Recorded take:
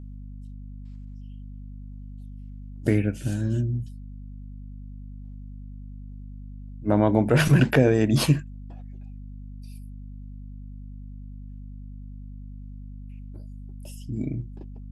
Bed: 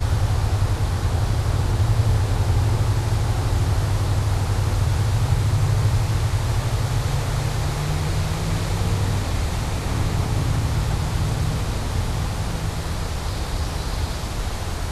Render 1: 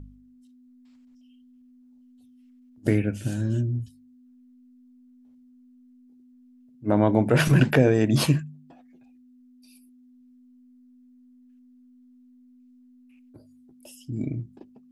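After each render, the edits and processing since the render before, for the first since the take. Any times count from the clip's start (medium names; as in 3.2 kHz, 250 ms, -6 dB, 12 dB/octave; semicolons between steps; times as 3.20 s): de-hum 50 Hz, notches 4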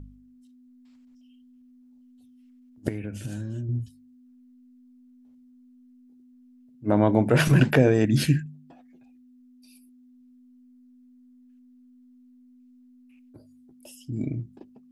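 2.88–3.69 s: compression, threshold -29 dBFS; 8.05–8.46 s: FFT filter 290 Hz 0 dB, 1.1 kHz -27 dB, 1.6 kHz +4 dB, 2.8 kHz -3 dB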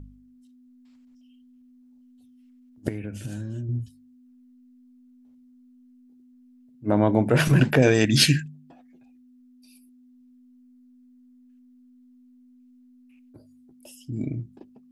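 7.82–8.48 s: peaking EQ 4.6 kHz +14 dB 2.9 oct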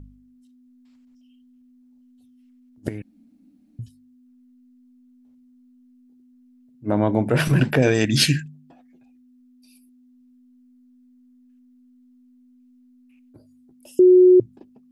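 3.02–3.79 s: room tone; 7.32–7.95 s: band-stop 6.7 kHz, Q 8.4; 13.99–14.40 s: bleep 365 Hz -8 dBFS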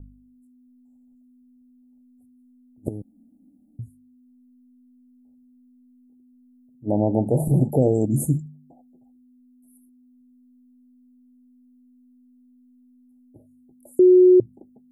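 Chebyshev band-stop 840–7000 Hz, order 5; high-order bell 3 kHz -12.5 dB 2.8 oct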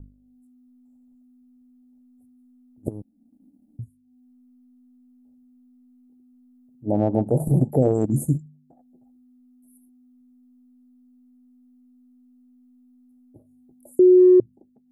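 transient shaper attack 0 dB, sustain -7 dB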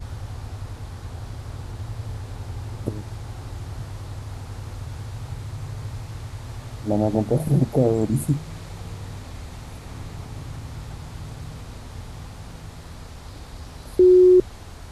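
add bed -13.5 dB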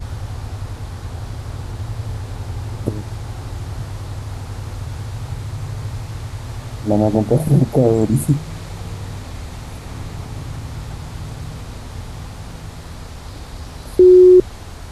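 trim +6 dB; peak limiter -3 dBFS, peak gain reduction 2.5 dB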